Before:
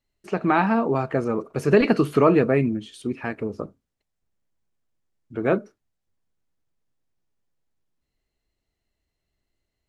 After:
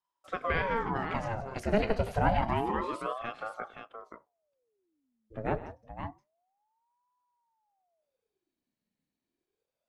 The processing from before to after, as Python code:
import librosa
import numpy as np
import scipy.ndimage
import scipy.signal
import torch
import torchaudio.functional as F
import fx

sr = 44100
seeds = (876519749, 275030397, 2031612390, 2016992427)

y = fx.weighting(x, sr, curve='D', at=(1.1, 1.6))
y = fx.echo_multitap(y, sr, ms=(102, 166, 523), db=(-17.5, -14.0, -7.5))
y = fx.ring_lfo(y, sr, carrier_hz=600.0, swing_pct=65, hz=0.28)
y = F.gain(torch.from_numpy(y), -7.5).numpy()